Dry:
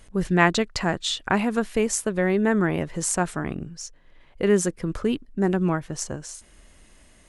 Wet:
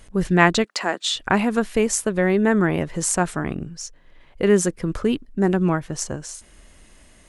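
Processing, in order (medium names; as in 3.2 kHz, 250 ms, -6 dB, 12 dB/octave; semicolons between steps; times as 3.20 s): 0.64–1.16 s: Bessel high-pass 370 Hz, order 8; trim +3 dB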